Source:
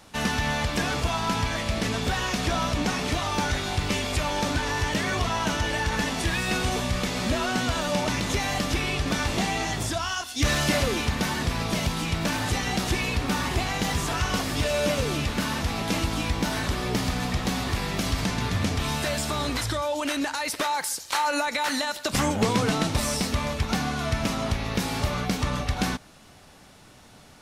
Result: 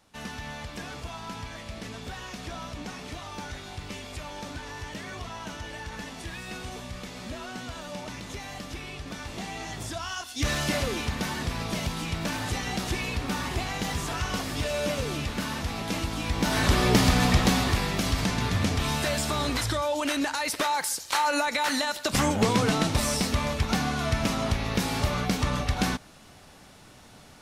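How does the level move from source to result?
0:09.22 −12 dB
0:10.26 −4 dB
0:16.20 −4 dB
0:16.73 +6 dB
0:17.37 +6 dB
0:17.96 0 dB

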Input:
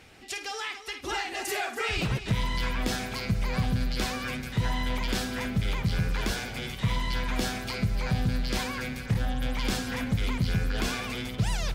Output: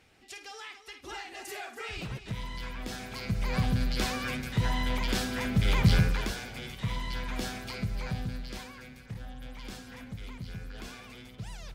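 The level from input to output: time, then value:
0:02.87 −9.5 dB
0:03.56 −0.5 dB
0:05.43 −0.5 dB
0:05.91 +6.5 dB
0:06.33 −5.5 dB
0:08.02 −5.5 dB
0:08.78 −14 dB

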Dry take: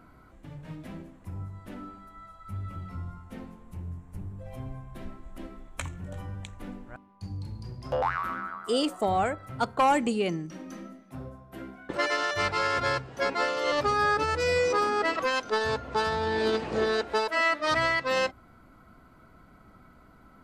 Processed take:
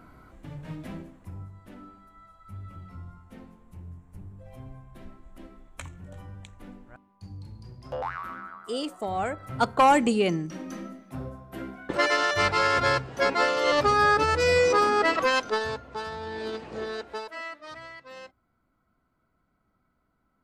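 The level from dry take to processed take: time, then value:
0:00.92 +3 dB
0:01.55 −5 dB
0:09.10 −5 dB
0:09.55 +4 dB
0:15.39 +4 dB
0:15.88 −7.5 dB
0:17.09 −7.5 dB
0:17.80 −18 dB

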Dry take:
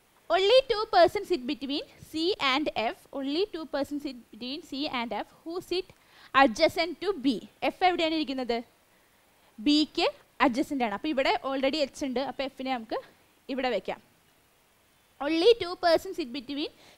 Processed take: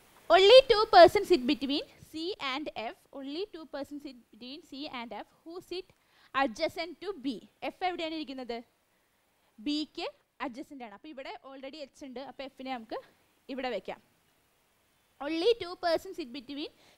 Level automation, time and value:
0:01.54 +3.5 dB
0:02.26 −8.5 dB
0:09.61 −8.5 dB
0:10.96 −17 dB
0:11.70 −17 dB
0:12.77 −6 dB

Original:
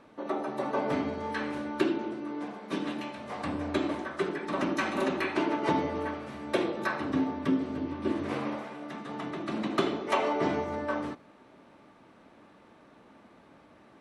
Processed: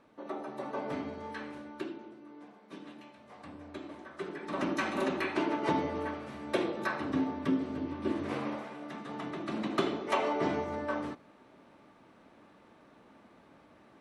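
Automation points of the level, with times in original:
0:01.24 −7 dB
0:02.11 −14.5 dB
0:03.87 −14.5 dB
0:04.65 −2.5 dB

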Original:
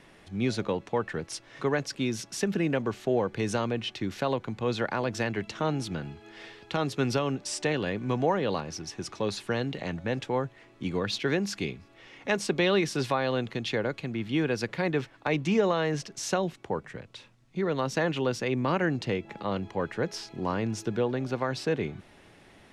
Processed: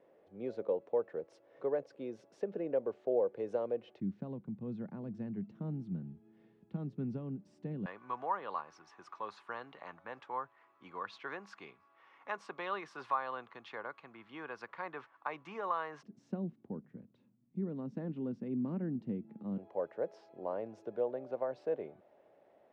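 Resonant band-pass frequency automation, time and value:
resonant band-pass, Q 3.9
520 Hz
from 0:04.00 190 Hz
from 0:07.86 1,100 Hz
from 0:16.03 220 Hz
from 0:19.58 590 Hz

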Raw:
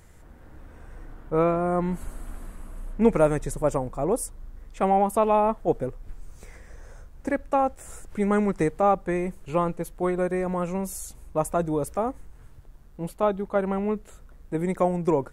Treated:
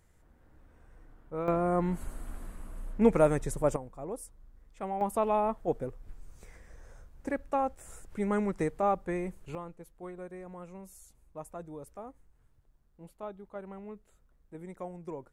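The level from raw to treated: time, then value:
−13 dB
from 0:01.48 −3.5 dB
from 0:03.76 −14 dB
from 0:05.01 −7 dB
from 0:09.55 −18 dB

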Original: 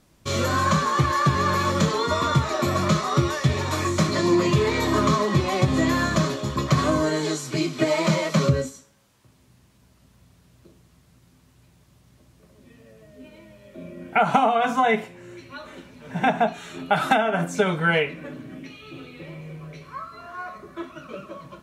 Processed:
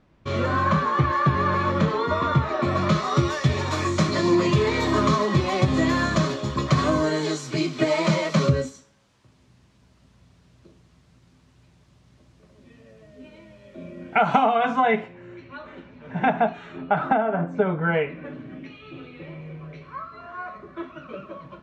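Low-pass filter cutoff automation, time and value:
0:02.57 2,500 Hz
0:03.17 6,300 Hz
0:13.93 6,300 Hz
0:15.11 2,500 Hz
0:16.55 2,500 Hz
0:17.12 1,200 Hz
0:17.81 1,200 Hz
0:18.34 3,000 Hz

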